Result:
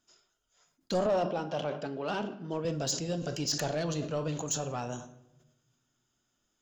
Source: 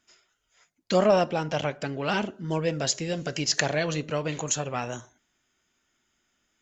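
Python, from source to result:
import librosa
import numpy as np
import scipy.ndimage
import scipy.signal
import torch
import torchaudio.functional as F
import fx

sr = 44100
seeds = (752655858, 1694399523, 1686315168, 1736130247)

y = fx.bandpass_edges(x, sr, low_hz=200.0, high_hz=4400.0, at=(1.06, 2.65))
y = fx.room_shoebox(y, sr, seeds[0], volume_m3=380.0, walls='mixed', distance_m=0.32)
y = 10.0 ** (-18.5 / 20.0) * np.tanh(y / 10.0 ** (-18.5 / 20.0))
y = fx.peak_eq(y, sr, hz=2100.0, db=-11.5, octaves=0.72)
y = fx.sustainer(y, sr, db_per_s=100.0)
y = F.gain(torch.from_numpy(y), -3.5).numpy()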